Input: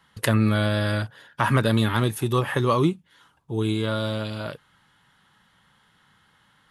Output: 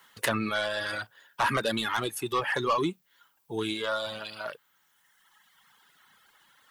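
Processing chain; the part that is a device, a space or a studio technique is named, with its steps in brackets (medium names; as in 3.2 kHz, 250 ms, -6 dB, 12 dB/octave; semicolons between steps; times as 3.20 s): frequency weighting A; open-reel tape (saturation -21 dBFS, distortion -12 dB; peaking EQ 89 Hz +3 dB 1.01 oct; white noise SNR 35 dB); reverb removal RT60 1.8 s; trim +2 dB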